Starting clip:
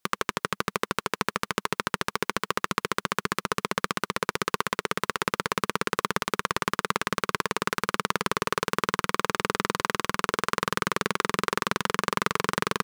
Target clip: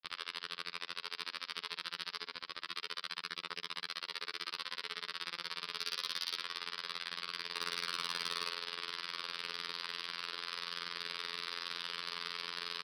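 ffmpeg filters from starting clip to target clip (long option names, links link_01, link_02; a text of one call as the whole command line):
ffmpeg -i in.wav -filter_complex "[0:a]acrossover=split=440|3000[link_01][link_02][link_03];[link_02]acompressor=threshold=-30dB:ratio=5[link_04];[link_01][link_04][link_03]amix=inputs=3:normalize=0,asettb=1/sr,asplit=3[link_05][link_06][link_07];[link_05]atrim=end=2.164[link_08];[link_06]atrim=start=2.16:end=2.64,asetpts=PTS-STARTPTS,afade=type=in:duration=0.004:curve=qsin,afade=type=out:start_time=0.476:duration=0.004:curve=qsin,volume=19.5dB,asoftclip=hard,volume=-19.5dB[link_09];[link_07]atrim=start=2.636[link_10];[link_08][link_09]acrossfade=duration=0.004:curve1=hsin:curve2=qsin[link_11];[link_11][link_10]acrossfade=duration=0.004:curve1=qsin:curve2=hsin,asplit=3[link_12][link_13][link_14];[link_12]afade=type=out:start_time=5.75:duration=0.02[link_15];[link_13]highshelf=frequency=3200:gain=10.5,afade=type=in:start_time=5.75:duration=0.02,afade=type=out:start_time=6.37:duration=0.02[link_16];[link_14]afade=type=in:start_time=6.37:duration=0.02[link_17];[link_15][link_16][link_17]amix=inputs=3:normalize=0,asettb=1/sr,asplit=3[link_18][link_19][link_20];[link_18]atrim=end=7.524[link_21];[link_19]atrim=start=7.52:end=8.48,asetpts=PTS-STARTPTS,afade=type=in:duration=0.004:curve=qsin,afade=type=out:start_time=0.956:duration=0.004:curve=qsin,acontrast=50[link_22];[link_20]atrim=start=8.476[link_23];[link_21][link_22]acrossfade=duration=0.004:curve1=hsin:curve2=qsin[link_24];[link_24][link_23]acrossfade=duration=0.004:curve1=qsin:curve2=hsin,aecho=1:1:66|132|198|264:0.501|0.155|0.0482|0.0149,afftfilt=real='hypot(re,im)*cos(PI*b)':imag='0':win_size=2048:overlap=0.75,aderivative,agate=range=-20dB:threshold=-49dB:ratio=16:detection=peak,aresample=11025,aresample=44100,asoftclip=type=tanh:threshold=-28.5dB,volume=6.5dB" out.wav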